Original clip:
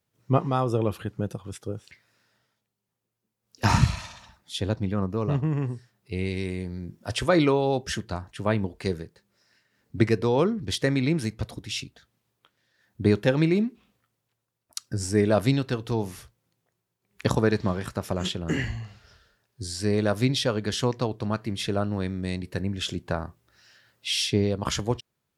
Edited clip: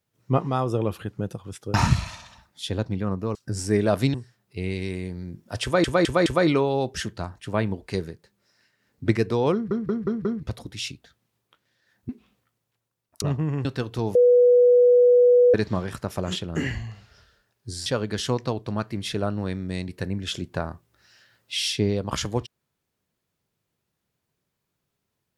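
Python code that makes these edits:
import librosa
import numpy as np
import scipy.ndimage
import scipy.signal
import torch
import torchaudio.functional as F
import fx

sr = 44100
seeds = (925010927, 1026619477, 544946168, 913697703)

y = fx.edit(x, sr, fx.cut(start_s=1.74, length_s=1.91),
    fx.swap(start_s=5.26, length_s=0.43, other_s=14.79, other_length_s=0.79),
    fx.stutter(start_s=7.18, slice_s=0.21, count=4),
    fx.stutter_over(start_s=10.45, slice_s=0.18, count=5),
    fx.cut(start_s=13.01, length_s=0.65),
    fx.bleep(start_s=16.08, length_s=1.39, hz=490.0, db=-12.0),
    fx.cut(start_s=19.79, length_s=0.61), tone=tone)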